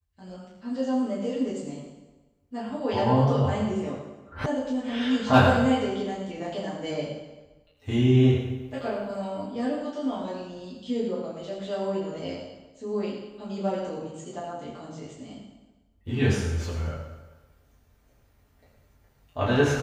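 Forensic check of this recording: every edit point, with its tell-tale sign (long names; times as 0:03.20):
0:04.46: cut off before it has died away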